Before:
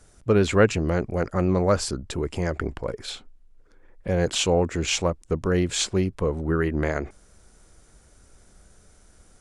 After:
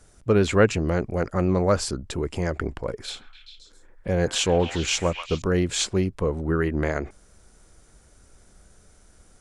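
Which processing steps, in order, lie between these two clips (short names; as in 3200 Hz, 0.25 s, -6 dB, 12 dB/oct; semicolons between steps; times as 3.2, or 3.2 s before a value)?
3.06–5.42 delay with a stepping band-pass 0.134 s, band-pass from 1300 Hz, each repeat 0.7 oct, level -5 dB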